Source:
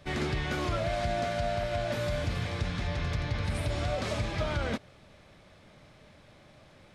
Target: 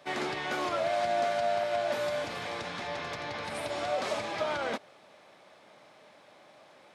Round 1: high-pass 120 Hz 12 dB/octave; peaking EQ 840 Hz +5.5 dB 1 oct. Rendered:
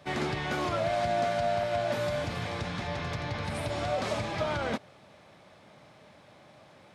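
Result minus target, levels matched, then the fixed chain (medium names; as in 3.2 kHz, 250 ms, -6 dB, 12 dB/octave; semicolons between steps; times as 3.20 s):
125 Hz band +12.5 dB
high-pass 320 Hz 12 dB/octave; peaking EQ 840 Hz +5.5 dB 1 oct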